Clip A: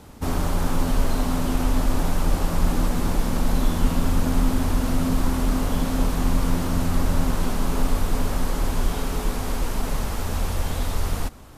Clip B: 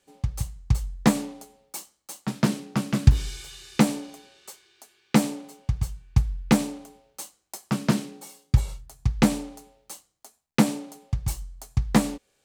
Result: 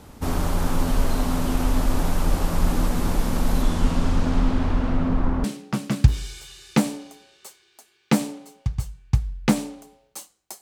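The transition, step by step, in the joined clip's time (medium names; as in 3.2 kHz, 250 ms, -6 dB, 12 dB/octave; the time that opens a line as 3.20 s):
clip A
3.62–5.44 s: low-pass 11 kHz -> 1.4 kHz
5.44 s: go over to clip B from 2.47 s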